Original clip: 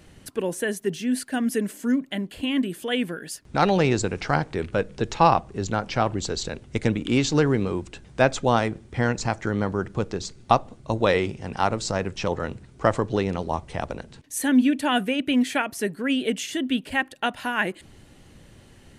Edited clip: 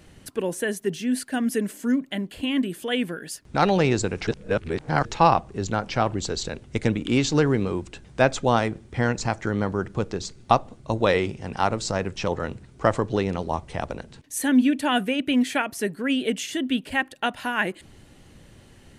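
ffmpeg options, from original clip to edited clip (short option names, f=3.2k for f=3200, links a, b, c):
-filter_complex "[0:a]asplit=3[a][b][c];[a]atrim=end=4.272[d];[b]atrim=start=4.268:end=5.052,asetpts=PTS-STARTPTS,areverse[e];[c]atrim=start=5.048[f];[d][e]acrossfade=d=0.004:c1=hsin:c2=hsin[g];[g][f]acrossfade=d=0.004:c1=hsin:c2=hsin"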